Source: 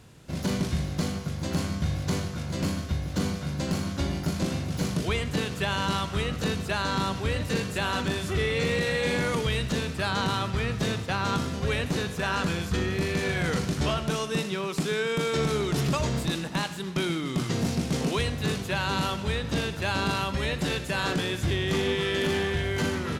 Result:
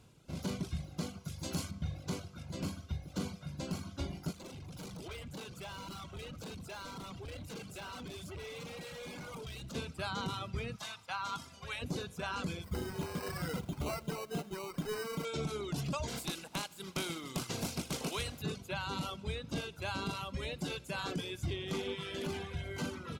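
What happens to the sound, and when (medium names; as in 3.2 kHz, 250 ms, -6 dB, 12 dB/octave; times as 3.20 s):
1.25–1.71 s: treble shelf 3.9 kHz +9 dB
4.32–9.75 s: overload inside the chain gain 32 dB
10.76–11.82 s: resonant low shelf 630 Hz -11 dB, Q 1.5
12.64–15.25 s: sample-rate reducer 3.4 kHz
16.07–18.41 s: spectral contrast reduction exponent 0.65
whole clip: band-stop 1.8 kHz, Q 5; reverb removal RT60 1.4 s; trim -8.5 dB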